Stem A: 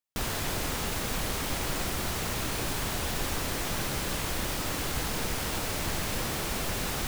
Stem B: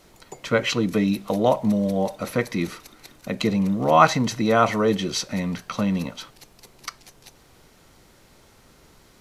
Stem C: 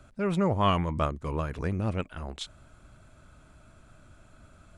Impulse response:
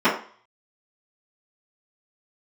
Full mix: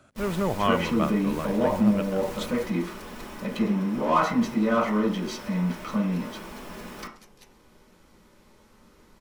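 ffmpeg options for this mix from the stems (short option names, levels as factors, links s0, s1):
-filter_complex "[0:a]volume=0.335,asplit=2[s0][s1];[s1]volume=0.106[s2];[1:a]bandreject=f=670:w=12,acontrast=87,adelay=150,volume=0.168,asplit=2[s3][s4];[s4]volume=0.126[s5];[2:a]highpass=180,volume=1,asplit=2[s6][s7];[s7]apad=whole_len=311923[s8];[s0][s8]sidechaingate=range=0.398:threshold=0.00141:ratio=16:detection=peak[s9];[s9][s3]amix=inputs=2:normalize=0,asoftclip=type=tanh:threshold=0.0299,acompressor=threshold=0.0158:ratio=6,volume=1[s10];[3:a]atrim=start_sample=2205[s11];[s2][s5]amix=inputs=2:normalize=0[s12];[s12][s11]afir=irnorm=-1:irlink=0[s13];[s6][s10][s13]amix=inputs=3:normalize=0,lowshelf=f=64:g=10"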